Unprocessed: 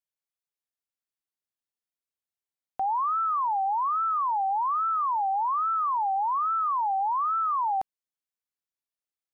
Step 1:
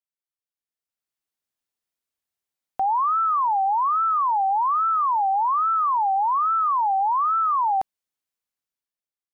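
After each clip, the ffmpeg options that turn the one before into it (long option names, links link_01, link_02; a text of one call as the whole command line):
ffmpeg -i in.wav -af "dynaudnorm=framelen=270:gausssize=7:maxgain=11.5dB,volume=-6.5dB" out.wav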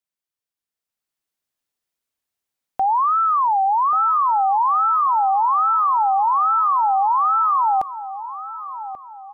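ffmpeg -i in.wav -filter_complex "[0:a]asplit=2[link_01][link_02];[link_02]adelay=1136,lowpass=frequency=1100:poles=1,volume=-11dB,asplit=2[link_03][link_04];[link_04]adelay=1136,lowpass=frequency=1100:poles=1,volume=0.51,asplit=2[link_05][link_06];[link_06]adelay=1136,lowpass=frequency=1100:poles=1,volume=0.51,asplit=2[link_07][link_08];[link_08]adelay=1136,lowpass=frequency=1100:poles=1,volume=0.51,asplit=2[link_09][link_10];[link_10]adelay=1136,lowpass=frequency=1100:poles=1,volume=0.51[link_11];[link_01][link_03][link_05][link_07][link_09][link_11]amix=inputs=6:normalize=0,volume=3.5dB" out.wav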